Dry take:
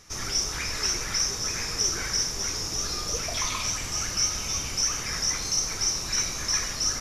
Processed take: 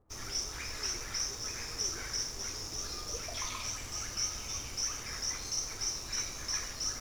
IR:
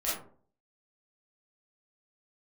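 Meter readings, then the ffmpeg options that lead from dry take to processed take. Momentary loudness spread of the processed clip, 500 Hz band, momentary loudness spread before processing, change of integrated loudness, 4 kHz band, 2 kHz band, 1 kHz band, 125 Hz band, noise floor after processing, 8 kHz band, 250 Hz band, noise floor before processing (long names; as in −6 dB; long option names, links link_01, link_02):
4 LU, −8.5 dB, 4 LU, −9.5 dB, −9.5 dB, −9.5 dB, −9.0 dB, −9.5 dB, −44 dBFS, −9.5 dB, −10.0 dB, −34 dBFS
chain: -filter_complex "[0:a]equalizer=frequency=170:width=5.3:gain=-10,acrossover=split=960[link_01][link_02];[link_02]aeval=exprs='sgn(val(0))*max(abs(val(0))-0.00473,0)':channel_layout=same[link_03];[link_01][link_03]amix=inputs=2:normalize=0,volume=-8.5dB"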